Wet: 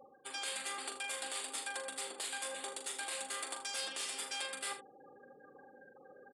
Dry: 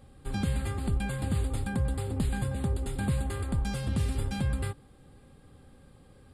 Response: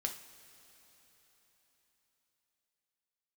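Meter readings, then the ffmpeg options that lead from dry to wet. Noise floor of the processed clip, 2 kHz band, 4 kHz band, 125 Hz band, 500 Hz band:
-61 dBFS, 0.0 dB, +5.5 dB, under -40 dB, -7.5 dB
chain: -af "afftfilt=real='re*lt(hypot(re,im),0.141)':imag='im*lt(hypot(re,im),0.141)':win_size=1024:overlap=0.75,bandreject=f=4000:w=22,afftfilt=real='re*gte(hypot(re,im),0.00224)':imag='im*gte(hypot(re,im),0.00224)':win_size=1024:overlap=0.75,aemphasis=mode=production:type=bsi,areverse,acompressor=threshold=0.00316:ratio=6,areverse,crystalizer=i=6.5:c=0,adynamicsmooth=sensitivity=4.5:basefreq=3600,aeval=exprs='(tanh(56.2*val(0)+0.25)-tanh(0.25))/56.2':c=same,highpass=500,lowpass=7600,aecho=1:1:41|79:0.422|0.237,volume=2.99"

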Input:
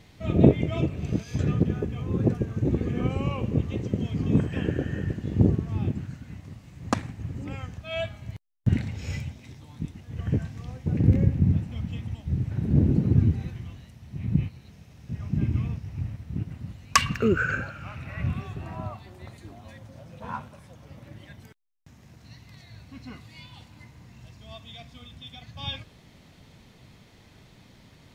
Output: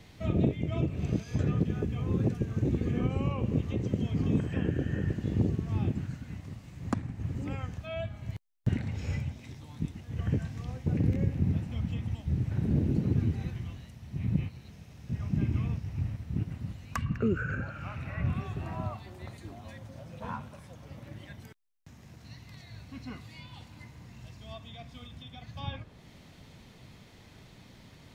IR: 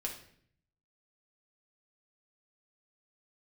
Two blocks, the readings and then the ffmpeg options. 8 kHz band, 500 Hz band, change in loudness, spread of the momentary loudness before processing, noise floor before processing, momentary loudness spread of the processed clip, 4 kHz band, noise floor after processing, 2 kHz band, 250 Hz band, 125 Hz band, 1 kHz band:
under -10 dB, -6.0 dB, -5.0 dB, 22 LU, -54 dBFS, 18 LU, -10.5 dB, -54 dBFS, -8.5 dB, -4.5 dB, -4.0 dB, -8.0 dB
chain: -filter_complex "[0:a]acrossover=split=330|1900[s0][s1][s2];[s0]acompressor=threshold=0.0562:ratio=4[s3];[s1]acompressor=threshold=0.0141:ratio=4[s4];[s2]acompressor=threshold=0.00251:ratio=4[s5];[s3][s4][s5]amix=inputs=3:normalize=0"

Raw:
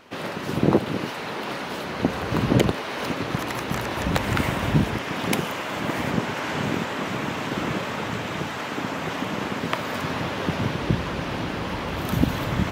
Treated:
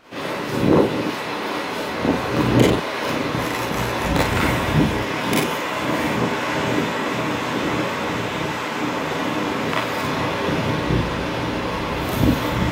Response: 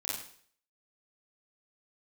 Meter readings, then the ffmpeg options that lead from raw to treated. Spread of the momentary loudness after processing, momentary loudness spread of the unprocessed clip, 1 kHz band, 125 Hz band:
6 LU, 7 LU, +5.5 dB, +2.5 dB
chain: -filter_complex "[1:a]atrim=start_sample=2205,atrim=end_sample=4410[s0];[0:a][s0]afir=irnorm=-1:irlink=0,volume=1.33"

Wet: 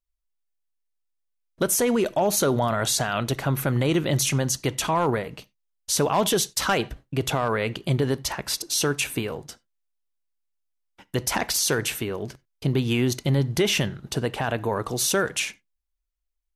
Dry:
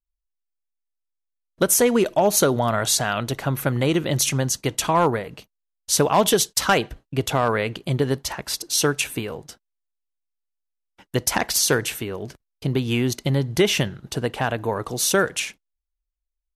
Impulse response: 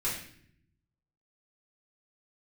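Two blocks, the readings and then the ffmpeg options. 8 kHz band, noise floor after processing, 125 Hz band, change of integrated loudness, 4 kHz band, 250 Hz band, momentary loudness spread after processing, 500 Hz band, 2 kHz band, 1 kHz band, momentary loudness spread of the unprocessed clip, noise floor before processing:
-3.0 dB, -77 dBFS, -0.5 dB, -2.5 dB, -2.0 dB, -2.0 dB, 8 LU, -3.0 dB, -2.5 dB, -3.5 dB, 11 LU, -81 dBFS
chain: -filter_complex "[0:a]alimiter=limit=0.188:level=0:latency=1:release=12,asplit=2[s0][s1];[1:a]atrim=start_sample=2205,atrim=end_sample=4410,lowpass=8200[s2];[s1][s2]afir=irnorm=-1:irlink=0,volume=0.0668[s3];[s0][s3]amix=inputs=2:normalize=0"

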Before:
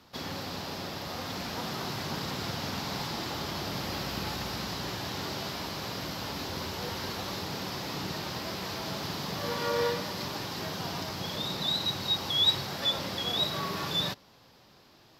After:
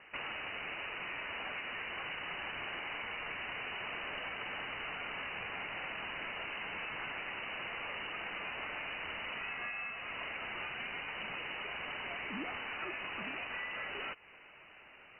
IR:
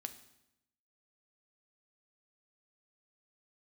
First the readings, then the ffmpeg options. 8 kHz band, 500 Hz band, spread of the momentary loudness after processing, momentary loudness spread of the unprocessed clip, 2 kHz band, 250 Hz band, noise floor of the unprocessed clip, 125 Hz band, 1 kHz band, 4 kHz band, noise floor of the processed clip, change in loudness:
under -40 dB, -12.0 dB, 1 LU, 7 LU, +2.5 dB, -14.0 dB, -58 dBFS, -19.5 dB, -7.0 dB, -13.5 dB, -57 dBFS, -7.5 dB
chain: -af "highpass=f=340:p=1,lowpass=f=2600:t=q:w=0.5098,lowpass=f=2600:t=q:w=0.6013,lowpass=f=2600:t=q:w=0.9,lowpass=f=2600:t=q:w=2.563,afreqshift=-3100,acompressor=threshold=0.00708:ratio=10,highshelf=f=2000:g=-11,volume=3.35"

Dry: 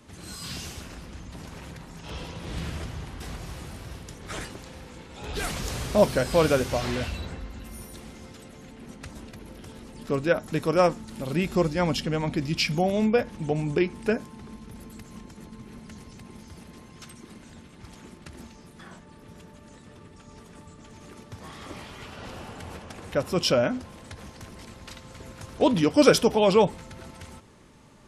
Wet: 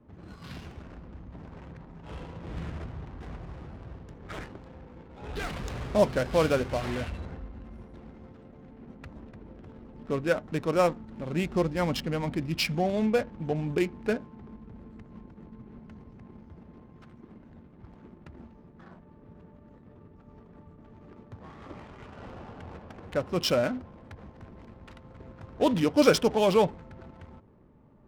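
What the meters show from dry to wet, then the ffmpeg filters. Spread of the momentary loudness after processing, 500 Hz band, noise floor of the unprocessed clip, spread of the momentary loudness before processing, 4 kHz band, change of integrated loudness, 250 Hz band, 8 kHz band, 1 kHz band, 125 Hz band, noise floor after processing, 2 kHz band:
23 LU, -3.0 dB, -49 dBFS, 22 LU, -4.0 dB, -2.5 dB, -3.0 dB, -6.5 dB, -3.0 dB, -3.0 dB, -54 dBFS, -3.5 dB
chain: -af "adynamicsmooth=sensitivity=8:basefreq=720,volume=0.708"

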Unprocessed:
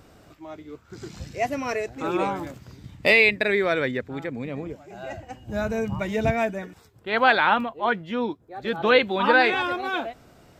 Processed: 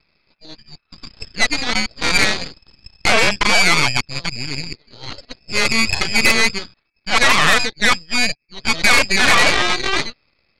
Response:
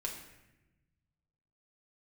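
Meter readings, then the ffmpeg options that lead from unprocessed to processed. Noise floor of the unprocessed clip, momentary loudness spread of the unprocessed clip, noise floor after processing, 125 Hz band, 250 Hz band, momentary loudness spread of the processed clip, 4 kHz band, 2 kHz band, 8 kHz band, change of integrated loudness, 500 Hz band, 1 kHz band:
-54 dBFS, 21 LU, -67 dBFS, +5.0 dB, +2.5 dB, 18 LU, +15.0 dB, +8.0 dB, no reading, +7.5 dB, -1.5 dB, +3.5 dB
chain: -af "aeval=exprs='0.708*sin(PI/2*3.98*val(0)/0.708)':c=same,lowpass=f=2300:t=q:w=0.5098,lowpass=f=2300:t=q:w=0.6013,lowpass=f=2300:t=q:w=0.9,lowpass=f=2300:t=q:w=2.563,afreqshift=-2700,aeval=exprs='1.41*(cos(1*acos(clip(val(0)/1.41,-1,1)))-cos(1*PI/2))+0.355*(cos(4*acos(clip(val(0)/1.41,-1,1)))-cos(4*PI/2))+0.0158*(cos(5*acos(clip(val(0)/1.41,-1,1)))-cos(5*PI/2))+0.224*(cos(7*acos(clip(val(0)/1.41,-1,1)))-cos(7*PI/2))+0.112*(cos(8*acos(clip(val(0)/1.41,-1,1)))-cos(8*PI/2))':c=same,volume=0.473"

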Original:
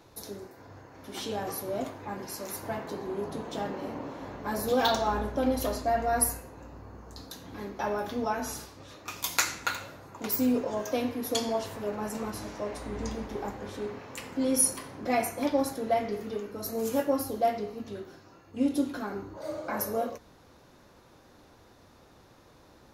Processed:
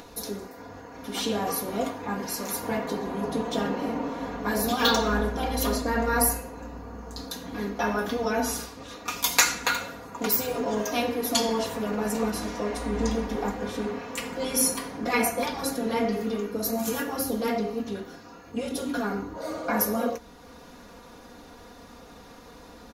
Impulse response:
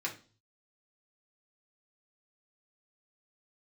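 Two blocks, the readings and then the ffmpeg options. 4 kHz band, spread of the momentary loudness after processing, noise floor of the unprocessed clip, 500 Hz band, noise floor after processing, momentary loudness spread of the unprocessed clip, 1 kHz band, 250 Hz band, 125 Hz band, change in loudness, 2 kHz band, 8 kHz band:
+7.0 dB, 14 LU, -57 dBFS, +2.0 dB, -48 dBFS, 17 LU, +2.5 dB, +3.5 dB, +5.0 dB, +3.5 dB, +7.0 dB, +4.0 dB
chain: -af "afftfilt=real='re*lt(hypot(re,im),0.224)':imag='im*lt(hypot(re,im),0.224)':win_size=1024:overlap=0.75,aecho=1:1:4.2:0.72,acompressor=mode=upward:threshold=0.00447:ratio=2.5,volume=1.88"

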